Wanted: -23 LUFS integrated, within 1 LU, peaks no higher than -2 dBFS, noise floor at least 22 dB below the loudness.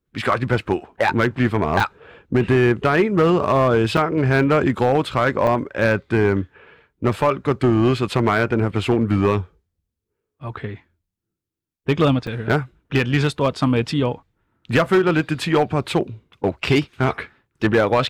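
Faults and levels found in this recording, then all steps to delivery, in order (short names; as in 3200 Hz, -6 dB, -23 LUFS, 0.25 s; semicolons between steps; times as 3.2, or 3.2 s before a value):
clipped 2.5%; flat tops at -10.0 dBFS; dropouts 4; longest dropout 3.9 ms; loudness -19.5 LUFS; peak -10.0 dBFS; loudness target -23.0 LUFS
-> clip repair -10 dBFS; interpolate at 1.8/3.97/5.47/12.27, 3.9 ms; gain -3.5 dB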